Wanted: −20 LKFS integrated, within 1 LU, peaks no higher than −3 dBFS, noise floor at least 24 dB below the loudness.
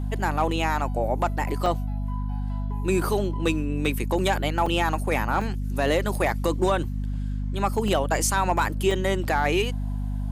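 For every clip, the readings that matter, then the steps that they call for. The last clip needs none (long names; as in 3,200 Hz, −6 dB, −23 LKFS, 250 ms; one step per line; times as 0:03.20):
number of dropouts 5; longest dropout 3.3 ms; mains hum 50 Hz; hum harmonics up to 250 Hz; level of the hum −25 dBFS; integrated loudness −25.5 LKFS; sample peak −11.0 dBFS; target loudness −20.0 LKFS
→ repair the gap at 0:01.66/0:04.66/0:05.41/0:07.88/0:08.91, 3.3 ms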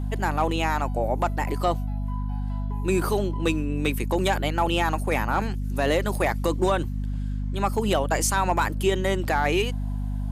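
number of dropouts 0; mains hum 50 Hz; hum harmonics up to 250 Hz; level of the hum −25 dBFS
→ hum removal 50 Hz, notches 5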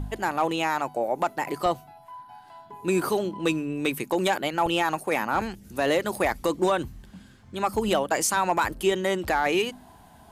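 mains hum none found; integrated loudness −26.0 LKFS; sample peak −12.5 dBFS; target loudness −20.0 LKFS
→ level +6 dB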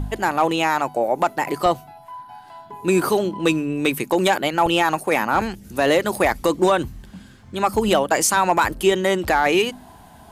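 integrated loudness −20.0 LKFS; sample peak −6.5 dBFS; background noise floor −45 dBFS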